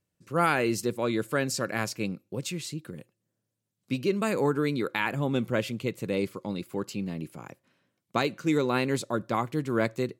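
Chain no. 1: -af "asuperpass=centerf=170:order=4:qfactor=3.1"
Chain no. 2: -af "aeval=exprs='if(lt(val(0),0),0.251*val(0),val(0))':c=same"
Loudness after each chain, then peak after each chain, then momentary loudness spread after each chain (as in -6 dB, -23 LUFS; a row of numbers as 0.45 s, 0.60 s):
-41.0 LUFS, -32.0 LUFS; -26.5 dBFS, -11.0 dBFS; 10 LU, 10 LU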